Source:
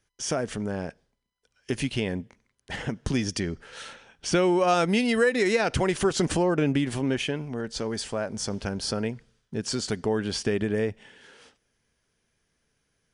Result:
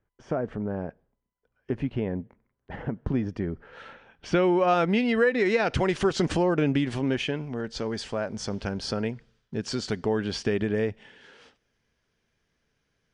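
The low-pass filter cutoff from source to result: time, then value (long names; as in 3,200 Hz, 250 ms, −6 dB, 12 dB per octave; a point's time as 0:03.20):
0:03.42 1,200 Hz
0:04.28 2,900 Hz
0:05.38 2,900 Hz
0:05.80 5,000 Hz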